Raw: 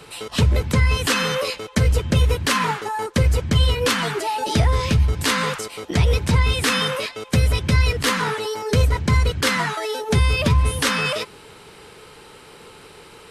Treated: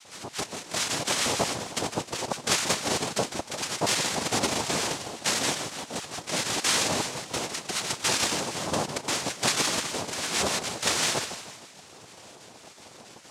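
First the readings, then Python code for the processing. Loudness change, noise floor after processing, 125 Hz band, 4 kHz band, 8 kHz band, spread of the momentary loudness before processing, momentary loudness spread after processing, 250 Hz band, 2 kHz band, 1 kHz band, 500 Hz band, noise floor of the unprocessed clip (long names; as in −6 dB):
−7.0 dB, −49 dBFS, −21.0 dB, −3.0 dB, +3.0 dB, 6 LU, 11 LU, −9.0 dB, −7.0 dB, −6.5 dB, −7.5 dB, −45 dBFS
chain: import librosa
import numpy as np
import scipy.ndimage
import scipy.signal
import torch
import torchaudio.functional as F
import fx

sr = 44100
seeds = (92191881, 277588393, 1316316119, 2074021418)

y = fx.spec_dropout(x, sr, seeds[0], share_pct=28)
y = scipy.signal.sosfilt(scipy.signal.butter(4, 470.0, 'highpass', fs=sr, output='sos'), y)
y = fx.air_absorb(y, sr, metres=200.0)
y = fx.echo_feedback(y, sr, ms=155, feedback_pct=48, wet_db=-10)
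y = fx.noise_vocoder(y, sr, seeds[1], bands=2)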